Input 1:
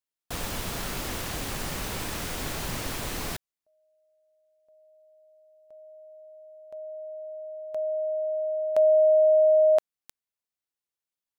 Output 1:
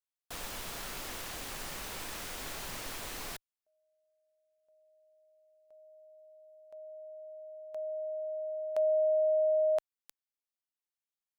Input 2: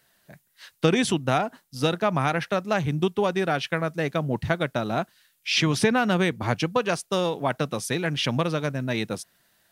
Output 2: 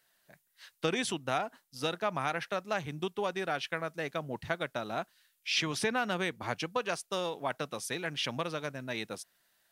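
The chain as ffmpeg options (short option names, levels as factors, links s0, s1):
-af "equalizer=f=100:w=0.32:g=-9.5,volume=0.473"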